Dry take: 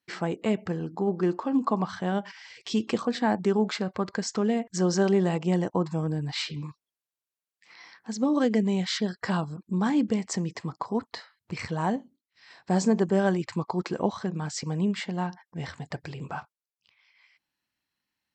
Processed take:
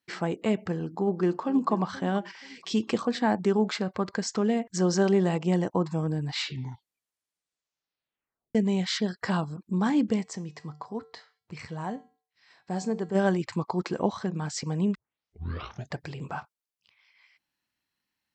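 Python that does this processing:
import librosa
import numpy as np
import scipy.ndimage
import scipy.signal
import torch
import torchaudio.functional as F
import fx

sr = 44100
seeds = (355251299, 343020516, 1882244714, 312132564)

y = fx.echo_throw(x, sr, start_s=0.82, length_s=0.87, ms=480, feedback_pct=30, wet_db=-16.0)
y = fx.comb_fb(y, sr, f0_hz=150.0, decay_s=0.42, harmonics='odd', damping=0.0, mix_pct=60, at=(10.23, 13.14), fade=0.02)
y = fx.edit(y, sr, fx.tape_stop(start_s=6.35, length_s=2.2),
    fx.tape_start(start_s=14.95, length_s=1.0), tone=tone)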